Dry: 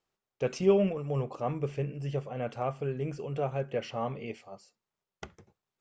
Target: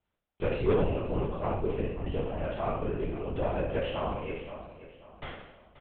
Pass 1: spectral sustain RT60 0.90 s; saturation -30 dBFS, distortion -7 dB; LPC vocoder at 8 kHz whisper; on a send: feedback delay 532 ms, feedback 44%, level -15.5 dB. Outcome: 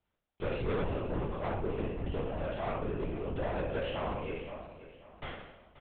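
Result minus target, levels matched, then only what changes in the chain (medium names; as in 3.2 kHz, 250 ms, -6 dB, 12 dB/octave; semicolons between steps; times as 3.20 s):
saturation: distortion +8 dB
change: saturation -20 dBFS, distortion -15 dB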